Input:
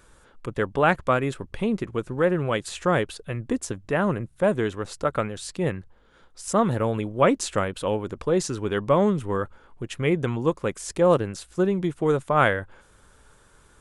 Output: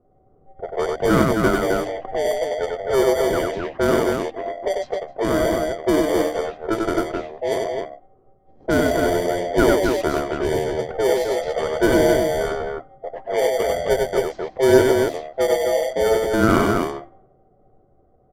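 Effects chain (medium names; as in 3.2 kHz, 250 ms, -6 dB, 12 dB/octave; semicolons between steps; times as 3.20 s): every band turned upside down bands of 1 kHz; low-pass 1.9 kHz 6 dB/octave; hum notches 50/100/150/200/250/300/350/400/450 Hz; in parallel at -5 dB: sample-and-hold 25×; on the sum: wide varispeed 0.753×; on a send: loudspeakers at several distances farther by 33 m -3 dB, 90 m -4 dB; on the sum: level-controlled noise filter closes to 370 Hz, open at -16.5 dBFS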